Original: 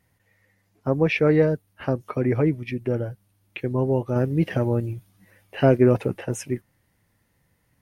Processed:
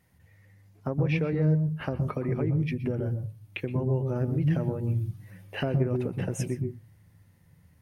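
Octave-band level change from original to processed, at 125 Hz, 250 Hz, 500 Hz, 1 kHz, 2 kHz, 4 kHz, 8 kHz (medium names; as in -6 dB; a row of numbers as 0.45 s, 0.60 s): -1.0 dB, -6.0 dB, -10.0 dB, -8.5 dB, -7.5 dB, -4.5 dB, no reading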